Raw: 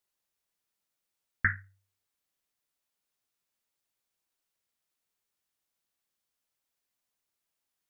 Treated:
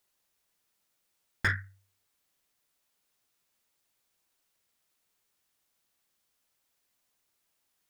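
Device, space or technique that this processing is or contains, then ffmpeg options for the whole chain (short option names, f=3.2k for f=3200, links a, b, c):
saturation between pre-emphasis and de-emphasis: -af "highshelf=f=2.5k:g=8,asoftclip=type=tanh:threshold=-27dB,highshelf=f=2.5k:g=-8,volume=7.5dB"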